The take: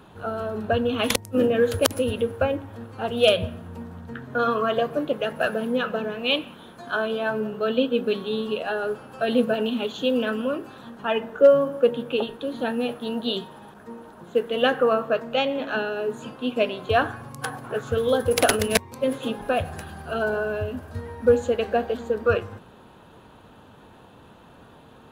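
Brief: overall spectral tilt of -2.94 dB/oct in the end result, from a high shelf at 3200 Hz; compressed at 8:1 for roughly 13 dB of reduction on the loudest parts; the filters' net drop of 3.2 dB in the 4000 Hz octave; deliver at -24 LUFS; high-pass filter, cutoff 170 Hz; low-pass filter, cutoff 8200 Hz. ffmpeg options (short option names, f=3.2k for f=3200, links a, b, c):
-af "highpass=170,lowpass=8.2k,highshelf=f=3.2k:g=3,equalizer=f=4k:t=o:g=-7,acompressor=threshold=-23dB:ratio=8,volume=5.5dB"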